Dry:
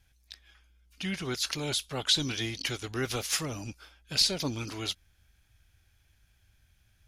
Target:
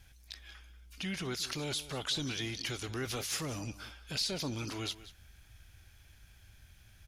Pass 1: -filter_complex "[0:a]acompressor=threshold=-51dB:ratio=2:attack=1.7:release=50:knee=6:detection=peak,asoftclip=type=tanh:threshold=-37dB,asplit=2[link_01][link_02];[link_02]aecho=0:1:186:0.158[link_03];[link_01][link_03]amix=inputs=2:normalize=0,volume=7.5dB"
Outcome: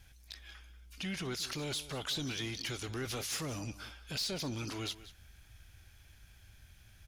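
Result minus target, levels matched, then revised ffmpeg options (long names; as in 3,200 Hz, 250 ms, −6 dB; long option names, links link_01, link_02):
soft clipping: distortion +17 dB
-filter_complex "[0:a]acompressor=threshold=-51dB:ratio=2:attack=1.7:release=50:knee=6:detection=peak,asoftclip=type=tanh:threshold=-26dB,asplit=2[link_01][link_02];[link_02]aecho=0:1:186:0.158[link_03];[link_01][link_03]amix=inputs=2:normalize=0,volume=7.5dB"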